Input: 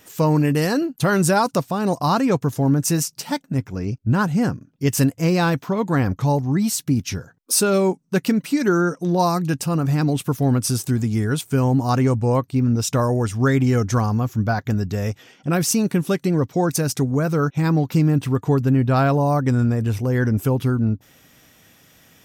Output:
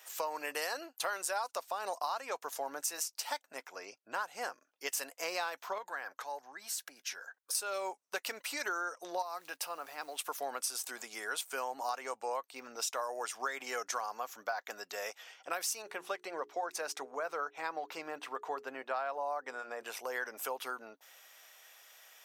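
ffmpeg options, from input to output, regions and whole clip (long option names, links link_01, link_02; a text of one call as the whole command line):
ffmpeg -i in.wav -filter_complex "[0:a]asettb=1/sr,asplit=3[link_01][link_02][link_03];[link_01]atrim=end=5.784[link_04];[link_02]atrim=start=5.78:end=7.55,asetpts=PTS-STARTPTS,afade=type=in:duration=0.004:curve=qsin,afade=type=out:start_time=1.766:duration=0.004:curve=qsin,equalizer=frequency=1600:width=5:gain=9.5,acompressor=threshold=-32dB:ratio=2.5:attack=3.2:release=140:knee=1:detection=peak,aeval=exprs='0.0944*(abs(mod(val(0)/0.0944+3,4)-2)-1)':channel_layout=same[link_05];[link_03]atrim=start=7.546[link_06];[link_04][link_05]acrossfade=duration=0.004:curve1=hsin:curve2=qsin[link_07];[link_07][link_06]acrossfade=duration=0.004:curve1=qsin:curve2=hsin,asettb=1/sr,asplit=3[link_08][link_09][link_10];[link_08]atrim=end=9.224[link_11];[link_09]atrim=start=9.22:end=10.19,asetpts=PTS-STARTPTS,afade=type=in:duration=0.004:curve=qsin,afade=type=out:start_time=0.966:duration=0.004:curve=qsin,equalizer=frequency=7400:width_type=o:width=0.72:gain=-8,acompressor=threshold=-23dB:ratio=5:attack=3.2:release=140:knee=1:detection=peak,acrusher=bits=9:mode=log:mix=0:aa=0.000001[link_12];[link_10]atrim=start=10.186[link_13];[link_11][link_12]acrossfade=duration=0.004:curve1=hsin:curve2=qsin[link_14];[link_14][link_13]acrossfade=duration=0.004:curve1=qsin:curve2=hsin,asettb=1/sr,asplit=3[link_15][link_16][link_17];[link_15]atrim=end=15.824[link_18];[link_16]atrim=start=15.82:end=19.83,asetpts=PTS-STARTPTS,afade=type=in:duration=0.004:curve=qsin,afade=type=out:start_time=4.006:duration=0.004:curve=qsin,lowpass=frequency=2300:poles=1,bandreject=frequency=60:width_type=h:width=6,bandreject=frequency=120:width_type=h:width=6,bandreject=frequency=180:width_type=h:width=6,bandreject=frequency=240:width_type=h:width=6,bandreject=frequency=300:width_type=h:width=6,bandreject=frequency=360:width_type=h:width=6,bandreject=frequency=420:width_type=h:width=6[link_19];[link_17]atrim=start=19.826[link_20];[link_18][link_19]acrossfade=duration=0.004:curve1=hsin:curve2=qsin[link_21];[link_21][link_20]acrossfade=duration=0.004:curve1=qsin:curve2=hsin,highpass=frequency=620:width=0.5412,highpass=frequency=620:width=1.3066,acompressor=threshold=-29dB:ratio=6,volume=-4dB" out.wav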